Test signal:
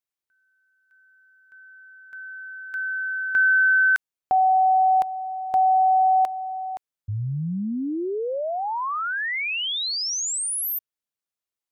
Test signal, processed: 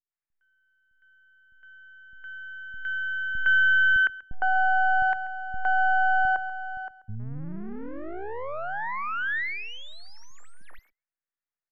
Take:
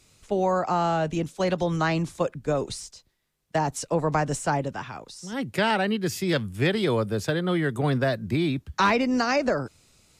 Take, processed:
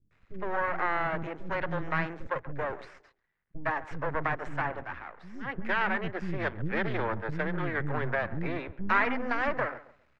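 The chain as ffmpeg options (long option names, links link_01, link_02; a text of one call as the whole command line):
ffmpeg -i in.wav -filter_complex "[0:a]asplit=2[link_01][link_02];[link_02]adelay=135,lowpass=frequency=1200:poles=1,volume=-15.5dB,asplit=2[link_03][link_04];[link_04]adelay=135,lowpass=frequency=1200:poles=1,volume=0.28,asplit=2[link_05][link_06];[link_06]adelay=135,lowpass=frequency=1200:poles=1,volume=0.28[link_07];[link_03][link_05][link_07]amix=inputs=3:normalize=0[link_08];[link_01][link_08]amix=inputs=2:normalize=0,aeval=exprs='max(val(0),0)':channel_layout=same,lowpass=frequency=1800:width_type=q:width=2.5,acrossover=split=300[link_09][link_10];[link_10]adelay=110[link_11];[link_09][link_11]amix=inputs=2:normalize=0,volume=-3dB" out.wav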